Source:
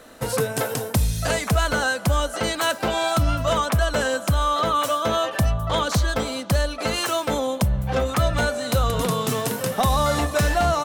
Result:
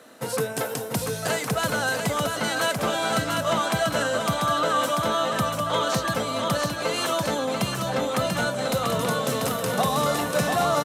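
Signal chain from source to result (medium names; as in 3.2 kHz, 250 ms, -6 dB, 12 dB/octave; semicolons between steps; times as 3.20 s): high-pass 130 Hz 24 dB/octave; on a send: bouncing-ball echo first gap 690 ms, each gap 0.9×, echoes 5; on the sum: resampled via 32 kHz; trim -3 dB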